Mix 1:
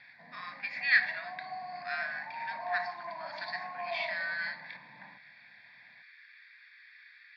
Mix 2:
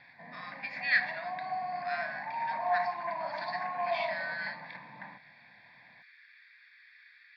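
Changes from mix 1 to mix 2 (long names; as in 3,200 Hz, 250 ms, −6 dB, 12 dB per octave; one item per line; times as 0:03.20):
background +6.0 dB
reverb: off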